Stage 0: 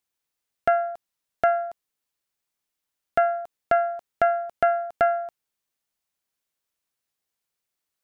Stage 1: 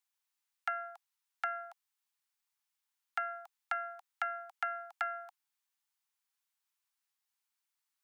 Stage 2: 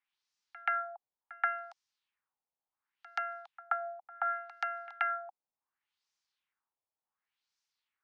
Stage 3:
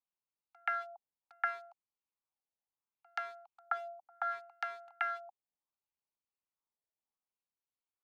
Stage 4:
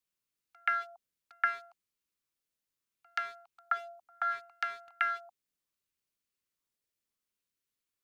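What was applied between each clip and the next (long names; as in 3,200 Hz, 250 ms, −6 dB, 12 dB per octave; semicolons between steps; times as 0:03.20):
Butterworth high-pass 770 Hz 96 dB per octave; downward compressor, threshold −28 dBFS, peak gain reduction 6 dB; level −3.5 dB
auto-filter low-pass sine 0.69 Hz 620–5,700 Hz; echo ahead of the sound 129 ms −20 dB
adaptive Wiener filter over 25 samples; level −2.5 dB
parametric band 810 Hz −14 dB 0.69 octaves; level +7 dB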